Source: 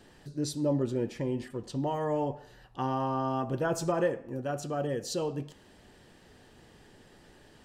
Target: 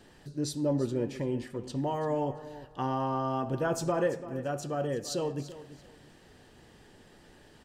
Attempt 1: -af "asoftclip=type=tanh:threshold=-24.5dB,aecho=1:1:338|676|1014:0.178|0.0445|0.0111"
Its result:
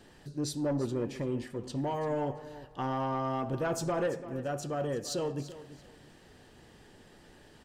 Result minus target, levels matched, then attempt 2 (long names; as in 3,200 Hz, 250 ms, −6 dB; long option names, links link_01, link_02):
soft clipping: distortion +16 dB
-af "asoftclip=type=tanh:threshold=-14dB,aecho=1:1:338|676|1014:0.178|0.0445|0.0111"